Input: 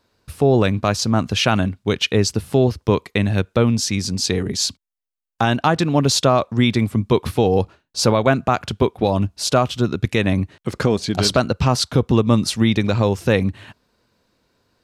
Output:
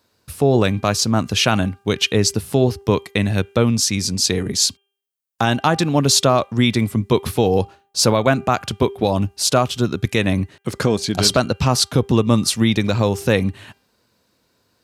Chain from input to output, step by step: high-pass 61 Hz; treble shelf 6.4 kHz +9.5 dB; de-hum 397.7 Hz, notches 8

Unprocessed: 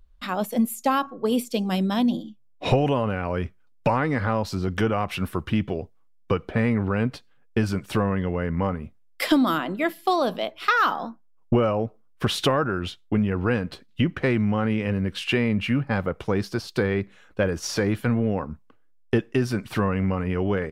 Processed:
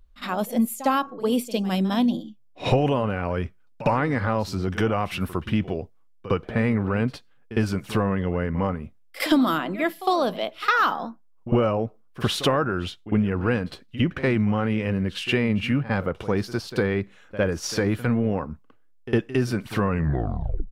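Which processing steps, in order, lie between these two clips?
tape stop on the ending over 0.80 s; pre-echo 57 ms -15 dB

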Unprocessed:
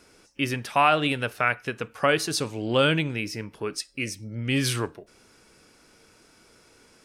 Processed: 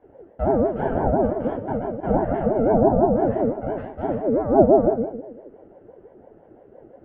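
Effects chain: bit-reversed sample order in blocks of 64 samples; low-pass 1.3 kHz 24 dB/octave; low-pass that closes with the level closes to 480 Hz, closed at -25 dBFS; bass shelf 230 Hz +11.5 dB; simulated room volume 95 m³, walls mixed, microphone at 1.7 m; ring modulator with a swept carrier 440 Hz, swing 25%, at 5.9 Hz; trim -1 dB

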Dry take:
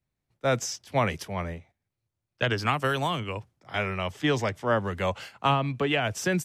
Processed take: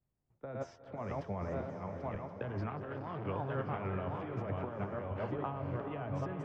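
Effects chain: backward echo that repeats 538 ms, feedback 55%, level -9 dB; low-pass 1.1 kHz 12 dB/octave; peak limiter -22 dBFS, peak gain reduction 9.5 dB; compressor with a negative ratio -33 dBFS, ratio -0.5; de-hum 85.53 Hz, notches 22; on a send: echo that smears into a reverb 457 ms, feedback 41%, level -7 dB; 2.70–3.27 s: on the sum: transformer saturation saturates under 560 Hz; trim -4 dB

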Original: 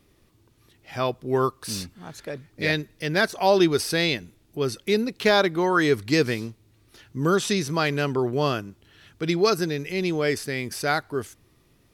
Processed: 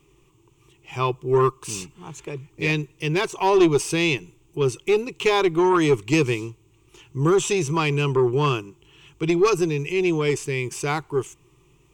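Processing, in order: rippled EQ curve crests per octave 0.7, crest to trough 15 dB; valve stage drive 10 dB, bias 0.25

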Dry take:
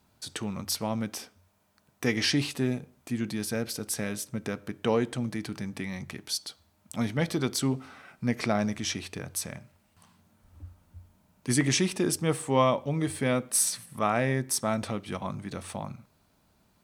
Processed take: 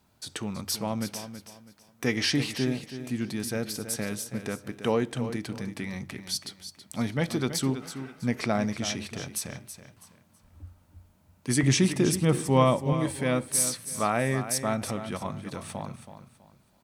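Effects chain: 11.63–12.93 s: bass shelf 200 Hz +9.5 dB; on a send: feedback delay 326 ms, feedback 29%, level -11 dB

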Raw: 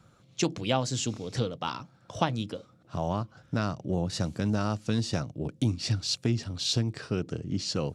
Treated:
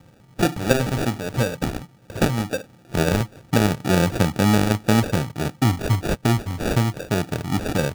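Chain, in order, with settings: 2.53–5.00 s: peaking EQ 370 Hz +4 dB 2.6 oct; sample-and-hold 42×; trim +8 dB

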